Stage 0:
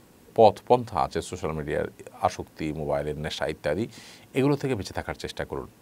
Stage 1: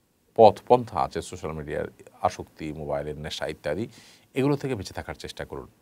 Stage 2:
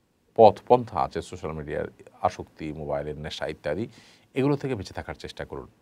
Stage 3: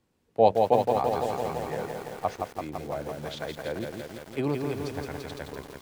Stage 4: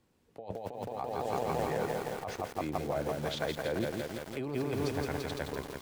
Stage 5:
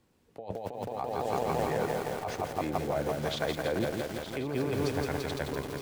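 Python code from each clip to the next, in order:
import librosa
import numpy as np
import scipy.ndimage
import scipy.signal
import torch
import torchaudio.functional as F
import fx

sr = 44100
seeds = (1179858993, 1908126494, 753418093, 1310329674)

y1 = fx.band_widen(x, sr, depth_pct=40)
y1 = y1 * librosa.db_to_amplitude(-1.5)
y2 = fx.high_shelf(y1, sr, hz=7500.0, db=-11.0)
y3 = fx.echo_crushed(y2, sr, ms=168, feedback_pct=80, bits=7, wet_db=-4.0)
y3 = y3 * librosa.db_to_amplitude(-5.0)
y4 = fx.over_compress(y3, sr, threshold_db=-32.0, ratio=-1.0)
y4 = y4 * librosa.db_to_amplitude(-2.5)
y5 = y4 + 10.0 ** (-11.5 / 20.0) * np.pad(y4, (int(917 * sr / 1000.0), 0))[:len(y4)]
y5 = y5 * librosa.db_to_amplitude(2.5)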